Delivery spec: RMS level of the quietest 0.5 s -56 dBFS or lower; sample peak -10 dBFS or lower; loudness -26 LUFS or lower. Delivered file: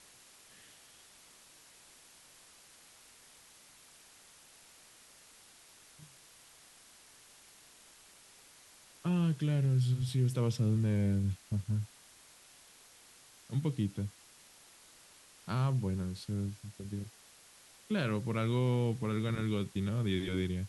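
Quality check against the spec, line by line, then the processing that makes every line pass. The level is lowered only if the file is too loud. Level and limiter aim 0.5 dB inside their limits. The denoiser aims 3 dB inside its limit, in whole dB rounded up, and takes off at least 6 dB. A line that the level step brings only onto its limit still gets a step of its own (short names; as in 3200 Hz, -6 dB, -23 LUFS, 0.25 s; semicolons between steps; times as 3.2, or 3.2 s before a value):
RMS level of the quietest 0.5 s -59 dBFS: OK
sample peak -20.5 dBFS: OK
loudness -33.5 LUFS: OK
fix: none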